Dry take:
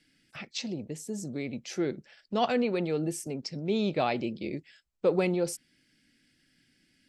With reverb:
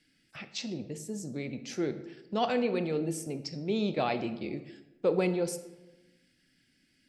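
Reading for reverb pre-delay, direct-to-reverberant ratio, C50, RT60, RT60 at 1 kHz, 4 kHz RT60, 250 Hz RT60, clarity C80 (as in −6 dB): 20 ms, 10.0 dB, 12.0 dB, 1.1 s, 1.0 s, 0.65 s, 1.3 s, 14.0 dB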